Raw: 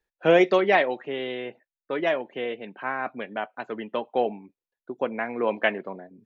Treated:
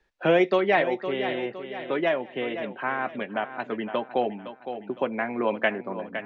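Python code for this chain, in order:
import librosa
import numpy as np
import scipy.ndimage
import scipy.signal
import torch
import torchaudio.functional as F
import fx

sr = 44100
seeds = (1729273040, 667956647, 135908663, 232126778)

y = scipy.signal.sosfilt(scipy.signal.butter(2, 4800.0, 'lowpass', fs=sr, output='sos'), x)
y = fx.low_shelf(y, sr, hz=130.0, db=5.5)
y = fx.notch(y, sr, hz=470.0, q=14.0)
y = fx.echo_feedback(y, sr, ms=511, feedback_pct=34, wet_db=-13.0)
y = fx.band_squash(y, sr, depth_pct=40)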